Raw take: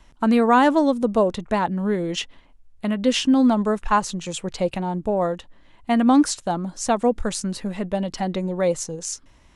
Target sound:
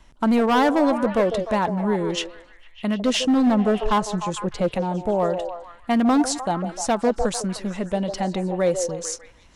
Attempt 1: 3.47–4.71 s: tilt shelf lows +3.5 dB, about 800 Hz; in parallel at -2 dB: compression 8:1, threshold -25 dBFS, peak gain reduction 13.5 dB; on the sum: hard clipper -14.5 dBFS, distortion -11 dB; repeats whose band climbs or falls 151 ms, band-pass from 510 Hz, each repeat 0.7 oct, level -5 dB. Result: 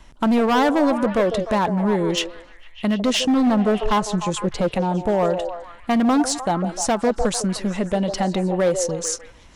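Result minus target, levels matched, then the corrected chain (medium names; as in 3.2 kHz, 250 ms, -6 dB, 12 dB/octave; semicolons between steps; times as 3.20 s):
compression: peak gain reduction +13.5 dB
3.47–4.71 s: tilt shelf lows +3.5 dB, about 800 Hz; hard clipper -14.5 dBFS, distortion -14 dB; repeats whose band climbs or falls 151 ms, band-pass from 510 Hz, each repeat 0.7 oct, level -5 dB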